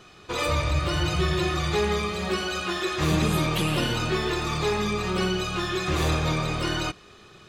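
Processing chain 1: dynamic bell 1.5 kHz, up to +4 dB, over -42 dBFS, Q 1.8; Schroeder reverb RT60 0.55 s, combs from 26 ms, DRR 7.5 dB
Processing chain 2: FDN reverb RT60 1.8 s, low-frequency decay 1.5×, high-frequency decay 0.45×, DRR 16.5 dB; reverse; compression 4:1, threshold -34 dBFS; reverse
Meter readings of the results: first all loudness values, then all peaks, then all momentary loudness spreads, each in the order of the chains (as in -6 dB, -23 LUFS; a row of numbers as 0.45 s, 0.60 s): -24.0 LUFS, -35.5 LUFS; -10.5 dBFS, -22.5 dBFS; 4 LU, 1 LU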